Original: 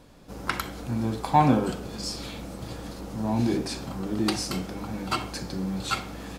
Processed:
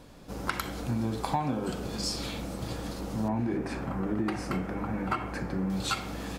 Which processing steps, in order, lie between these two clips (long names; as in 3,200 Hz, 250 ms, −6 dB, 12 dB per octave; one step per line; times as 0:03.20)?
0:03.28–0:05.70: high shelf with overshoot 2,800 Hz −12.5 dB, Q 1.5
downward compressor 10 to 1, threshold −27 dBFS, peak gain reduction 14.5 dB
level +1.5 dB